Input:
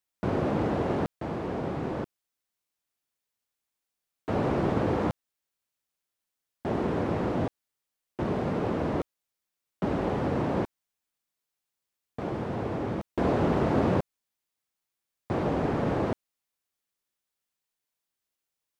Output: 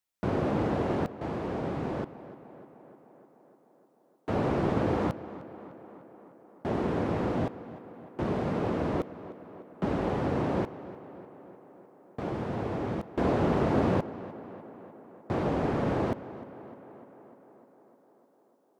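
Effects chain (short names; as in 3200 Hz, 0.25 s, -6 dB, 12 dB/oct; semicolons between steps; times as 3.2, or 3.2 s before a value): tape echo 0.302 s, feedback 74%, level -14.5 dB, low-pass 3000 Hz; gain -1 dB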